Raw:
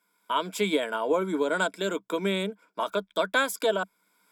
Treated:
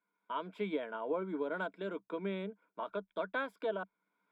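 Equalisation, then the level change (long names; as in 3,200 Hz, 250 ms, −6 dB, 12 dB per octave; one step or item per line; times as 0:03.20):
high-frequency loss of the air 460 metres
−9.0 dB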